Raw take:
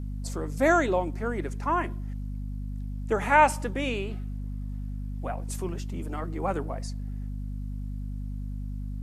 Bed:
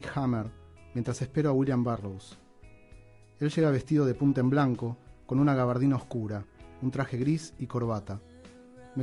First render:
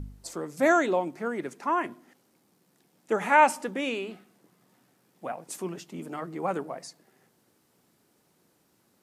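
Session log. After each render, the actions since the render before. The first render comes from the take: de-hum 50 Hz, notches 5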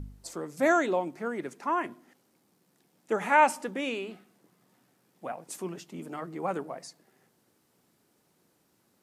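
trim -2 dB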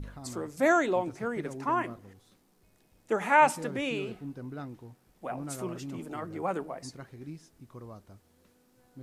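add bed -15.5 dB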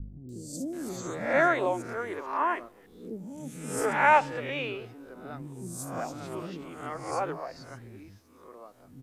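reverse spectral sustain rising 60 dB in 0.59 s; three bands offset in time lows, highs, mids 290/730 ms, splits 310/4600 Hz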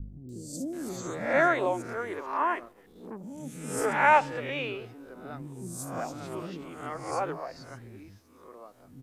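2.59–3.24 s: transformer saturation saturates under 610 Hz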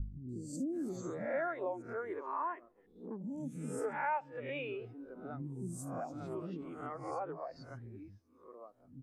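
compression 4:1, threshold -37 dBFS, peak gain reduction 18 dB; spectral contrast expander 1.5:1

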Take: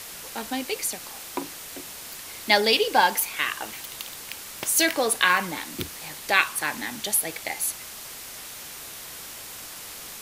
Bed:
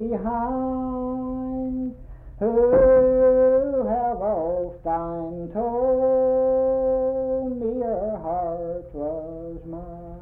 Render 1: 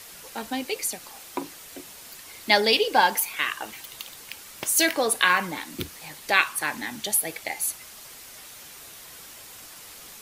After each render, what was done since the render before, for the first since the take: noise reduction 6 dB, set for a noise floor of -40 dBFS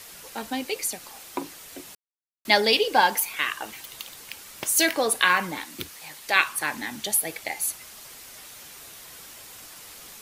1.95–2.45 s: mute; 5.65–6.36 s: bass shelf 460 Hz -8 dB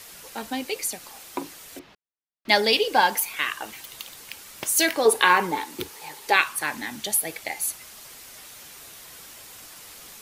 1.79–2.49 s: distance through air 260 m; 5.05–6.36 s: small resonant body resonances 420/860 Hz, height 13 dB, ringing for 30 ms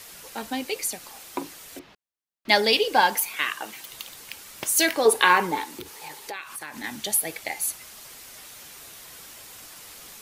3.28–3.90 s: high-pass 130 Hz 24 dB/octave; 5.72–6.84 s: compression 5:1, threshold -33 dBFS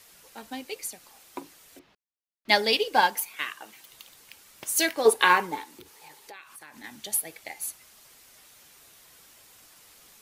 upward expansion 1.5:1, over -33 dBFS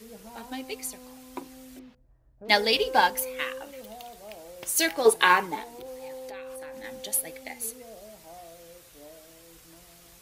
add bed -21 dB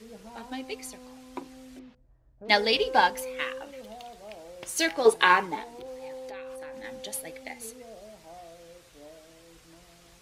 distance through air 50 m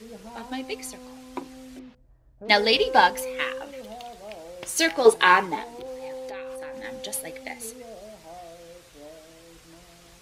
trim +4 dB; peak limiter -3 dBFS, peak gain reduction 3 dB

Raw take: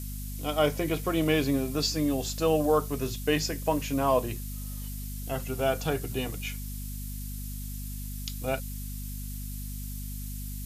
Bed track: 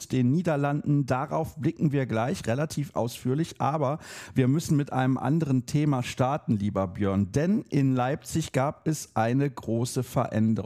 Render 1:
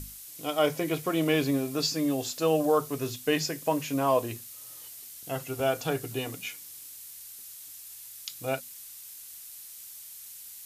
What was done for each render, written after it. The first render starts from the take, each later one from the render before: hum notches 50/100/150/200/250 Hz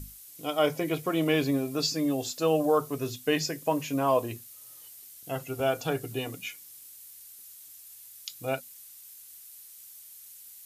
noise reduction 6 dB, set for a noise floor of -46 dBFS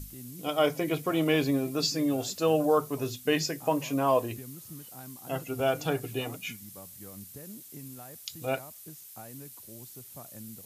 add bed track -22 dB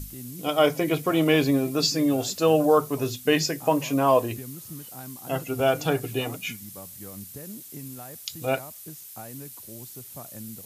trim +5 dB

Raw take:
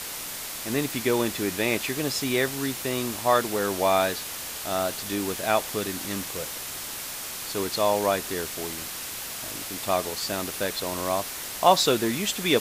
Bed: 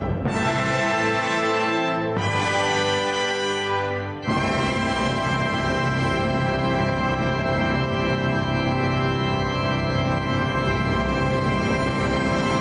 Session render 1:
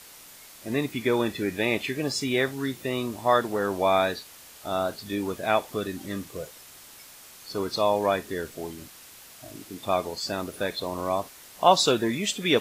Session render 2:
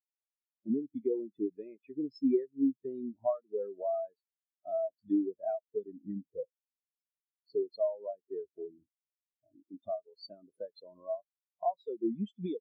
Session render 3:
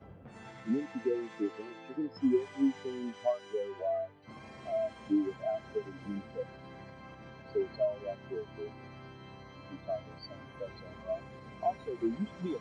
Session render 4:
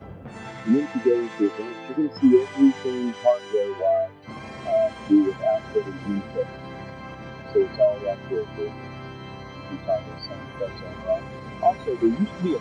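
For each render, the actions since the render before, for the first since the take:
noise print and reduce 13 dB
compression 8:1, threshold -33 dBFS, peak gain reduction 20.5 dB; spectral contrast expander 4:1
add bed -27.5 dB
trim +12 dB

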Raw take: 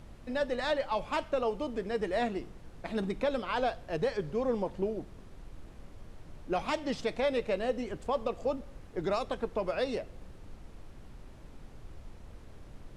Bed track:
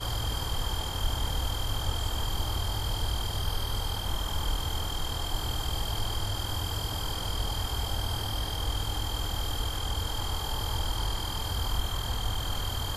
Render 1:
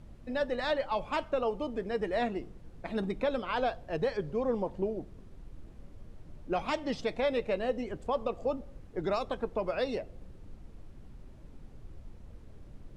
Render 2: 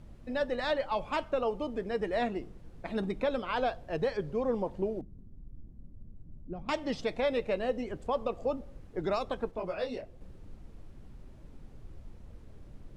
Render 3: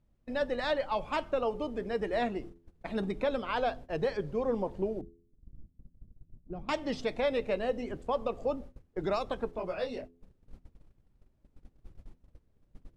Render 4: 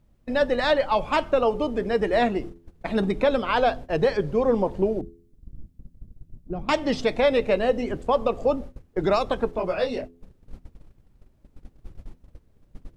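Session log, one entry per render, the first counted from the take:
noise reduction 7 dB, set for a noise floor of -51 dBFS
5.01–6.69 s: FFT filter 240 Hz 0 dB, 420 Hz -11 dB, 2.5 kHz -26 dB; 9.51–10.21 s: detune thickener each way 33 cents
gate -43 dBFS, range -20 dB; de-hum 84.91 Hz, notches 5
trim +9.5 dB

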